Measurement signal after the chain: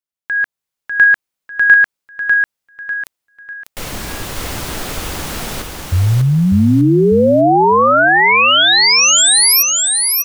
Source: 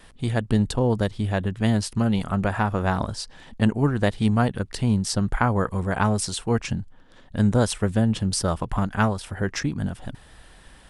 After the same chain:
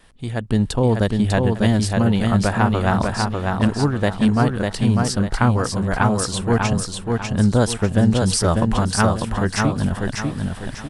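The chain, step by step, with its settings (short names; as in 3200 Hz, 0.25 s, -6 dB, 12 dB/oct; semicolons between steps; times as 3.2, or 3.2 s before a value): AGC gain up to 12.5 dB; on a send: feedback echo 0.597 s, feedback 36%, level -3.5 dB; on the sum: gain -3 dB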